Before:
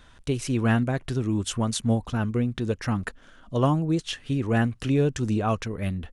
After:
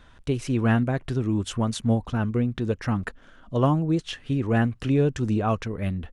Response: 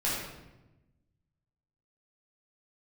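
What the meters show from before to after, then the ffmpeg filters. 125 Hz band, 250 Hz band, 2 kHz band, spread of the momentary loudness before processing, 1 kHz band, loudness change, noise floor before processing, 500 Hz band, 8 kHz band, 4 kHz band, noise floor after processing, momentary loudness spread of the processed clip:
+1.0 dB, +1.0 dB, −0.5 dB, 7 LU, +0.5 dB, +1.0 dB, −53 dBFS, +1.0 dB, −5.5 dB, −2.5 dB, −52 dBFS, 7 LU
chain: -af "highshelf=frequency=4200:gain=-8.5,volume=1dB"

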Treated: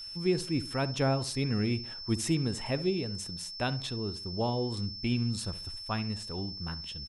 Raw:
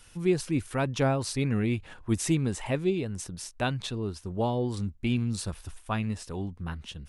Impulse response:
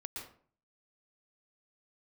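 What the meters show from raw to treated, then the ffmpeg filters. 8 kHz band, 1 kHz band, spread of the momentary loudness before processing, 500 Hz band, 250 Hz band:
−3.0 dB, −3.0 dB, 9 LU, −3.0 dB, −3.0 dB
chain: -filter_complex "[0:a]asplit=2[link_01][link_02];[link_02]adelay=67,lowpass=frequency=1300:poles=1,volume=-13.5dB,asplit=2[link_03][link_04];[link_04]adelay=67,lowpass=frequency=1300:poles=1,volume=0.34,asplit=2[link_05][link_06];[link_06]adelay=67,lowpass=frequency=1300:poles=1,volume=0.34[link_07];[link_01][link_03][link_05][link_07]amix=inputs=4:normalize=0,aeval=exprs='val(0)+0.0141*sin(2*PI*5300*n/s)':channel_layout=same,volume=-3dB"

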